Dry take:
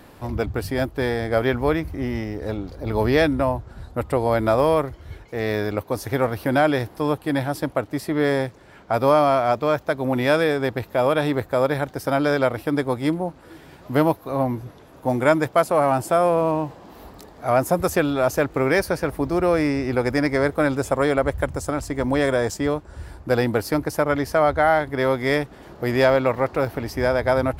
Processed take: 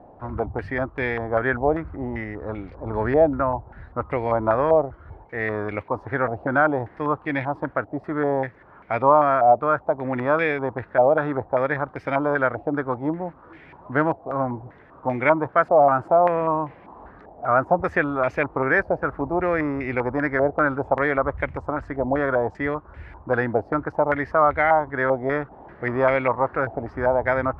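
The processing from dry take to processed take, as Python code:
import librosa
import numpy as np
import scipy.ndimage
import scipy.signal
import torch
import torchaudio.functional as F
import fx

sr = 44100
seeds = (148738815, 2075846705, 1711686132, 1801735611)

y = fx.air_absorb(x, sr, metres=82.0, at=(16.66, 17.5))
y = fx.filter_held_lowpass(y, sr, hz=5.1, low_hz=730.0, high_hz=2200.0)
y = y * librosa.db_to_amplitude(-4.5)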